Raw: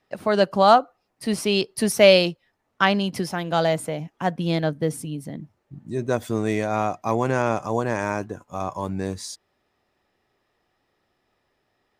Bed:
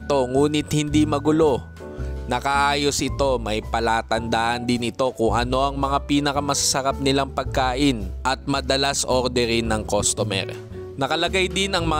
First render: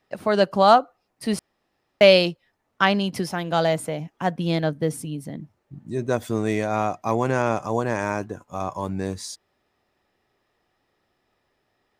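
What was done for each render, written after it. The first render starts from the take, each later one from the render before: 1.39–2.01 room tone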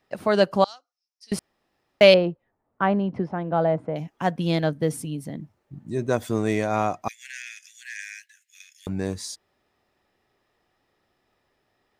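0.64–1.32 band-pass 5500 Hz, Q 6.9; 2.14–3.96 LPF 1100 Hz; 7.08–8.87 steep high-pass 1700 Hz 96 dB/oct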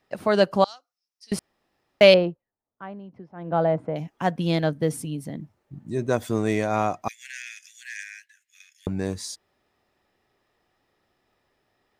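2.23–3.55 dip -16.5 dB, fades 0.21 s; 8.03–8.89 tilt shelf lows +6 dB, about 1500 Hz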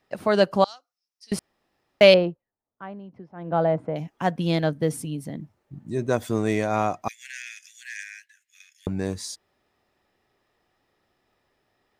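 nothing audible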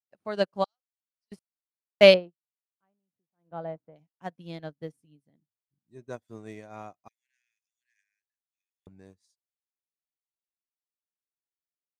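upward expander 2.5:1, over -39 dBFS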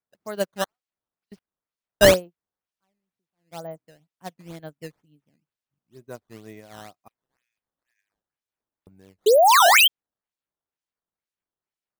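9.26–9.88 painted sound rise 400–3300 Hz -14 dBFS; decimation with a swept rate 11×, swing 160% 2.1 Hz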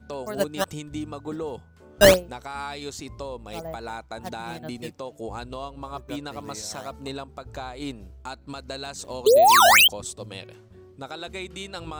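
add bed -14.5 dB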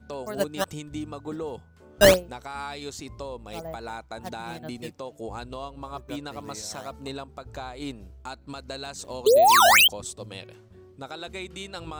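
gain -1.5 dB

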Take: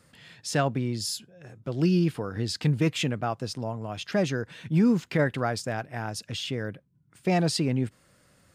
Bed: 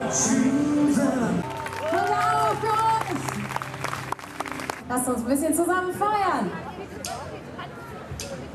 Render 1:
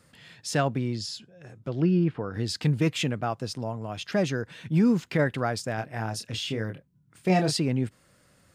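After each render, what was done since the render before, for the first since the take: 0.93–2.34 treble ducked by the level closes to 2000 Hz, closed at -23 dBFS; 5.75–7.55 doubler 27 ms -6 dB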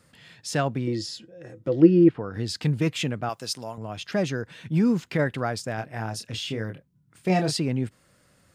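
0.87–2.09 small resonant body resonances 330/500/1900 Hz, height 15 dB, ringing for 85 ms; 3.29–3.78 tilt +3 dB/oct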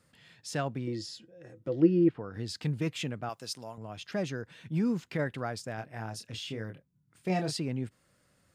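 gain -7.5 dB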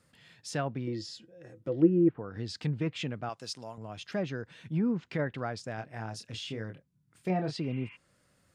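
treble ducked by the level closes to 1500 Hz, closed at -24.5 dBFS; 7.66–7.93 spectral repair 860–3400 Hz before

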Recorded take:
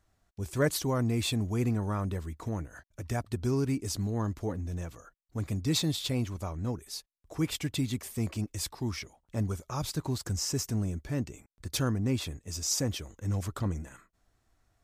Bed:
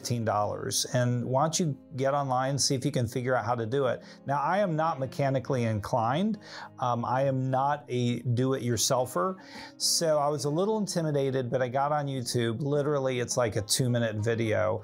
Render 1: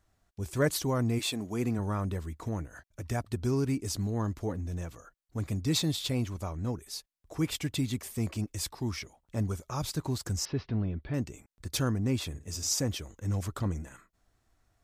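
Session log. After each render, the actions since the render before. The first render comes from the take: 1.18–1.78 HPF 350 Hz -> 110 Hz; 10.45–11.14 steep low-pass 4100 Hz 48 dB/oct; 12.29–12.75 flutter echo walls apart 9.3 m, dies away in 0.28 s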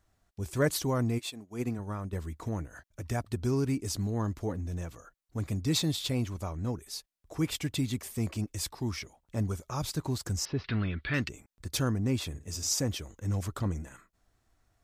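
1.05–2.13 upward expander 2.5:1, over -41 dBFS; 10.64–11.29 band shelf 2400 Hz +15.5 dB 2.3 oct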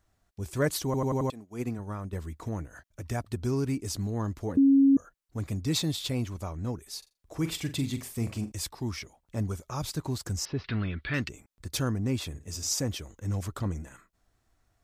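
0.85 stutter in place 0.09 s, 5 plays; 4.57–4.97 bleep 274 Hz -16 dBFS; 6.98–8.52 flutter echo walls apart 7.3 m, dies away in 0.25 s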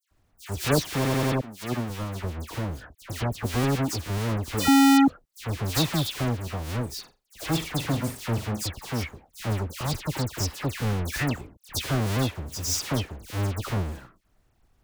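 half-waves squared off; dispersion lows, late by 0.112 s, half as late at 2200 Hz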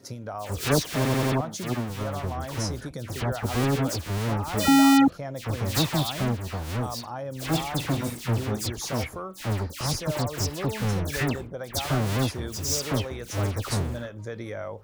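add bed -8 dB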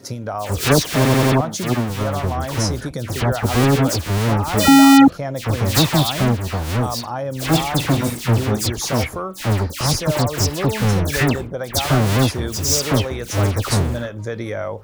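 gain +9 dB; limiter -2 dBFS, peak gain reduction 2.5 dB

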